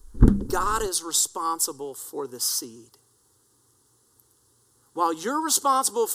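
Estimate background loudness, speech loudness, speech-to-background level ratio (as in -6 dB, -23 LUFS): -22.0 LUFS, -25.0 LUFS, -3.0 dB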